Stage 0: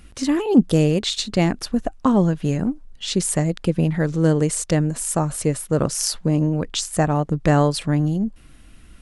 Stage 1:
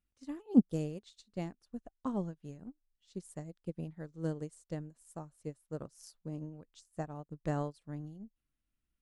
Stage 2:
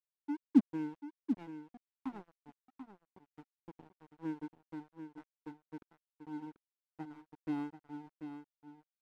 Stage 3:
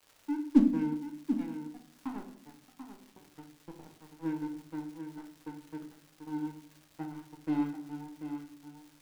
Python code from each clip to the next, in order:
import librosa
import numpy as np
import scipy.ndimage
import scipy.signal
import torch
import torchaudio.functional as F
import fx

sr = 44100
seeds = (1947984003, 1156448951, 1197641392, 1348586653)

y1 = fx.dynamic_eq(x, sr, hz=2300.0, q=1.1, threshold_db=-40.0, ratio=4.0, max_db=-5)
y1 = fx.upward_expand(y1, sr, threshold_db=-29.0, expansion=2.5)
y1 = y1 * librosa.db_to_amplitude(-8.5)
y2 = fx.vowel_filter(y1, sr, vowel='u')
y2 = np.sign(y2) * np.maximum(np.abs(y2) - 10.0 ** (-49.5 / 20.0), 0.0)
y2 = y2 + 10.0 ** (-9.0 / 20.0) * np.pad(y2, (int(738 * sr / 1000.0), 0))[:len(y2)]
y2 = y2 * librosa.db_to_amplitude(7.5)
y3 = fx.tracing_dist(y2, sr, depth_ms=0.043)
y3 = fx.dmg_crackle(y3, sr, seeds[0], per_s=400.0, level_db=-51.0)
y3 = fx.room_shoebox(y3, sr, seeds[1], volume_m3=97.0, walls='mixed', distance_m=0.52)
y3 = y3 * librosa.db_to_amplitude(3.0)